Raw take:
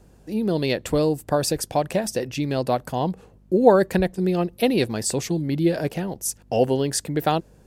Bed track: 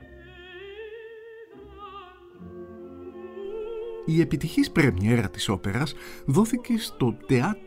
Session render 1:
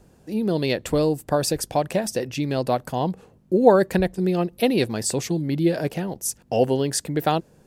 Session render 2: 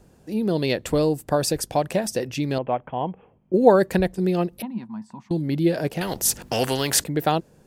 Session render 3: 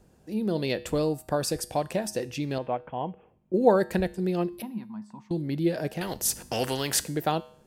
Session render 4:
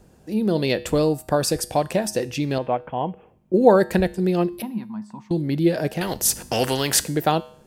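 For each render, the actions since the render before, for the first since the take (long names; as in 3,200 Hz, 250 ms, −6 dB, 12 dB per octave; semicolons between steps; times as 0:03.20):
hum removal 50 Hz, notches 2
0:02.58–0:03.54: Chebyshev low-pass with heavy ripple 3,300 Hz, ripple 6 dB; 0:04.62–0:05.31: pair of resonant band-passes 450 Hz, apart 2.2 octaves; 0:06.01–0:07.04: every bin compressed towards the loudest bin 2 to 1
tuned comb filter 70 Hz, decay 0.58 s, harmonics odd, mix 50%
level +6.5 dB; brickwall limiter −2 dBFS, peak gain reduction 1.5 dB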